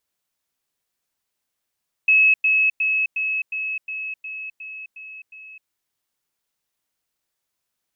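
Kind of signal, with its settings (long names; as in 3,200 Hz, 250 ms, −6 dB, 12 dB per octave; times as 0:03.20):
level staircase 2,580 Hz −11.5 dBFS, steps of −3 dB, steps 10, 0.26 s 0.10 s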